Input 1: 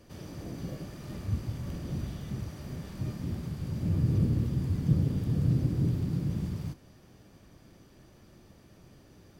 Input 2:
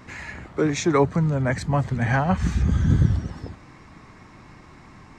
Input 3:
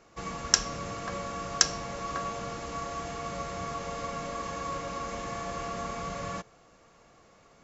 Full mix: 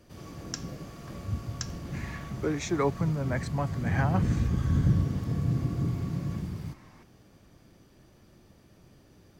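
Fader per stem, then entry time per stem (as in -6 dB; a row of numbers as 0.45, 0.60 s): -1.5, -8.0, -15.0 dB; 0.00, 1.85, 0.00 s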